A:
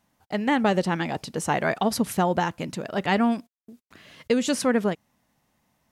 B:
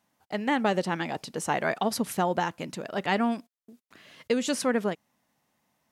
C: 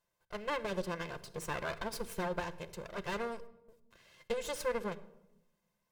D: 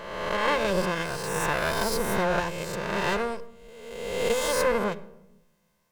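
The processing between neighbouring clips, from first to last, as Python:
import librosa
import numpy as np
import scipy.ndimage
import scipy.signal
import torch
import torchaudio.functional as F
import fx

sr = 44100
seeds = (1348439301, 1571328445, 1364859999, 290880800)

y1 = fx.highpass(x, sr, hz=200.0, slope=6)
y1 = y1 * librosa.db_to_amplitude(-2.5)
y2 = fx.lower_of_two(y1, sr, delay_ms=1.9)
y2 = fx.room_shoebox(y2, sr, seeds[0], volume_m3=3500.0, walls='furnished', distance_m=0.83)
y2 = y2 * librosa.db_to_amplitude(-9.0)
y3 = fx.spec_swells(y2, sr, rise_s=1.39)
y3 = y3 * librosa.db_to_amplitude(8.0)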